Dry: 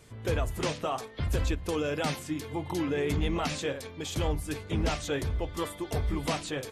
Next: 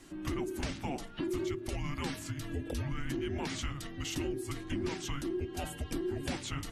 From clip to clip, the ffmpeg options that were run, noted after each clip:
-af "afreqshift=-420,acompressor=threshold=0.0178:ratio=3,bandreject=f=111.1:t=h:w=4,bandreject=f=222.2:t=h:w=4,volume=1.12"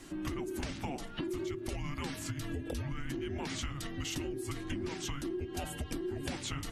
-af "acompressor=threshold=0.0126:ratio=6,volume=1.58"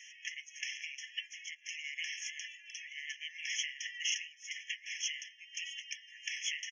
-af "aresample=16000,aresample=44100,afftfilt=real='re*eq(mod(floor(b*sr/1024/1700),2),1)':imag='im*eq(mod(floor(b*sr/1024/1700),2),1)':win_size=1024:overlap=0.75,volume=2.37"

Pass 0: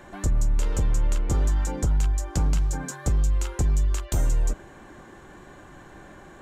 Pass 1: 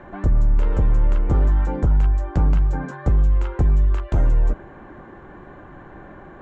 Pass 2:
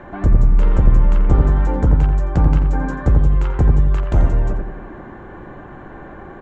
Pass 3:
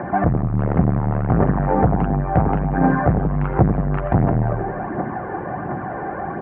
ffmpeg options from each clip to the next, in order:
-af "lowpass=1700,volume=1.88"
-filter_complex "[0:a]asplit=2[s0][s1];[s1]adelay=87,lowpass=f=1500:p=1,volume=0.668,asplit=2[s2][s3];[s3]adelay=87,lowpass=f=1500:p=1,volume=0.51,asplit=2[s4][s5];[s5]adelay=87,lowpass=f=1500:p=1,volume=0.51,asplit=2[s6][s7];[s7]adelay=87,lowpass=f=1500:p=1,volume=0.51,asplit=2[s8][s9];[s9]adelay=87,lowpass=f=1500:p=1,volume=0.51,asplit=2[s10][s11];[s11]adelay=87,lowpass=f=1500:p=1,volume=0.51,asplit=2[s12][s13];[s13]adelay=87,lowpass=f=1500:p=1,volume=0.51[s14];[s0][s2][s4][s6][s8][s10][s12][s14]amix=inputs=8:normalize=0,volume=1.58"
-af "aphaser=in_gain=1:out_gain=1:delay=2.6:decay=0.42:speed=1.4:type=triangular,asoftclip=type=tanh:threshold=0.2,highpass=120,equalizer=f=120:t=q:w=4:g=4,equalizer=f=180:t=q:w=4:g=4,equalizer=f=730:t=q:w=4:g=9,lowpass=f=2100:w=0.5412,lowpass=f=2100:w=1.3066,volume=2.24"

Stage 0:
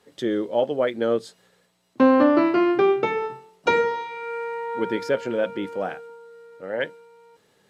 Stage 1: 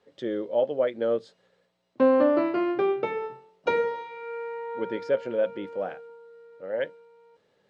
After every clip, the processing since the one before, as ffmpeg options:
-af "lowpass=4700,equalizer=f=550:w=2.9:g=7.5,volume=0.422"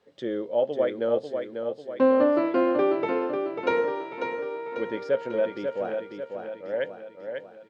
-af "aecho=1:1:544|1088|1632|2176|2720|3264:0.501|0.256|0.13|0.0665|0.0339|0.0173"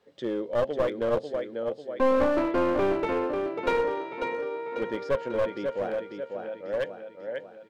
-af "aeval=exprs='clip(val(0),-1,0.0562)':c=same"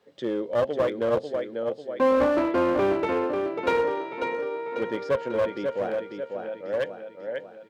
-af "highpass=72,volume=1.26"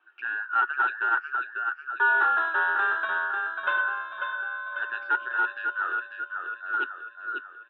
-af "afftfilt=real='real(if(between(b,1,1012),(2*floor((b-1)/92)+1)*92-b,b),0)':imag='imag(if(between(b,1,1012),(2*floor((b-1)/92)+1)*92-b,b),0)*if(between(b,1,1012),-1,1)':win_size=2048:overlap=0.75,highpass=f=350:w=0.5412,highpass=f=350:w=1.3066,equalizer=f=360:t=q:w=4:g=9,equalizer=f=540:t=q:w=4:g=-6,equalizer=f=860:t=q:w=4:g=5,equalizer=f=1300:t=q:w=4:g=6,equalizer=f=1900:t=q:w=4:g=-4,equalizer=f=2700:t=q:w=4:g=9,lowpass=f=3000:w=0.5412,lowpass=f=3000:w=1.3066,volume=0.596"

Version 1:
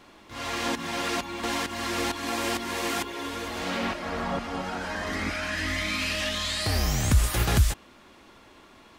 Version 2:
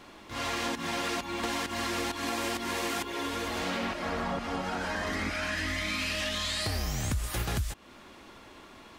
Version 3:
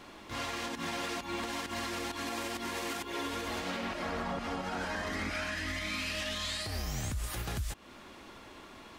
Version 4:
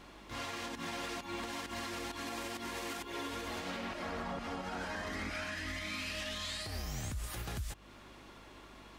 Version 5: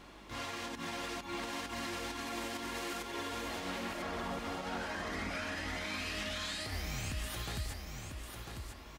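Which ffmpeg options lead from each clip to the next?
-af "acompressor=threshold=0.0282:ratio=5,volume=1.26"
-af "alimiter=level_in=1.33:limit=0.0631:level=0:latency=1:release=167,volume=0.75"
-af "aeval=exprs='val(0)+0.00158*(sin(2*PI*50*n/s)+sin(2*PI*2*50*n/s)/2+sin(2*PI*3*50*n/s)/3+sin(2*PI*4*50*n/s)/4+sin(2*PI*5*50*n/s)/5)':c=same,volume=0.631"
-af "aecho=1:1:997|1994|2991|3988:0.501|0.15|0.0451|0.0135"

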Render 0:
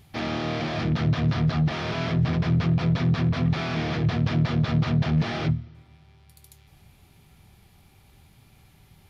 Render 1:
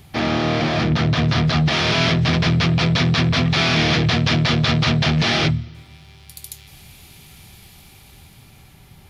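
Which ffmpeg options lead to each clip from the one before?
-filter_complex "[0:a]bandreject=f=50:t=h:w=6,bandreject=f=100:t=h:w=6,acrossover=split=420|2300[s0][s1][s2];[s0]alimiter=limit=0.0891:level=0:latency=1[s3];[s2]dynaudnorm=f=250:g=11:m=2.99[s4];[s3][s1][s4]amix=inputs=3:normalize=0,volume=2.66"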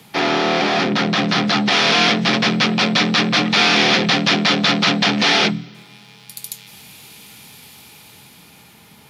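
-af "lowshelf=f=210:g=-12,afreqshift=53,volume=1.78"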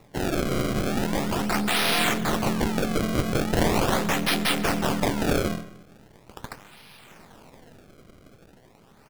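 -filter_complex "[0:a]aeval=exprs='if(lt(val(0),0),0.447*val(0),val(0))':c=same,acrusher=samples=28:mix=1:aa=0.000001:lfo=1:lforange=44.8:lforate=0.4,asplit=2[s0][s1];[s1]adelay=134,lowpass=f=3200:p=1,volume=0.15,asplit=2[s2][s3];[s3]adelay=134,lowpass=f=3200:p=1,volume=0.32,asplit=2[s4][s5];[s5]adelay=134,lowpass=f=3200:p=1,volume=0.32[s6];[s0][s2][s4][s6]amix=inputs=4:normalize=0,volume=0.531"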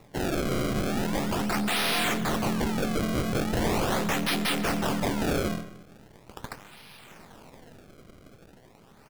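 -af "asoftclip=type=tanh:threshold=0.1"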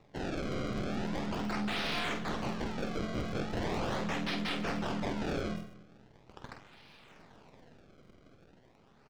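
-filter_complex "[0:a]acrossover=split=6600[s0][s1];[s0]asplit=2[s2][s3];[s3]adelay=48,volume=0.447[s4];[s2][s4]amix=inputs=2:normalize=0[s5];[s1]acrusher=samples=39:mix=1:aa=0.000001:lfo=1:lforange=23.4:lforate=0.23[s6];[s5][s6]amix=inputs=2:normalize=0,volume=0.376"

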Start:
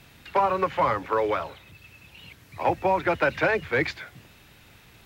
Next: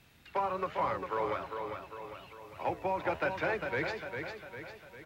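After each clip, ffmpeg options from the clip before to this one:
-af "aecho=1:1:401|802|1203|1604|2005|2406:0.501|0.256|0.13|0.0665|0.0339|0.0173,flanger=delay=9.8:depth=8.3:regen=85:speed=1.2:shape=sinusoidal,volume=0.531"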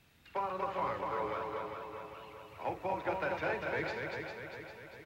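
-af "aecho=1:1:46.65|239.1:0.282|0.631,volume=0.631"

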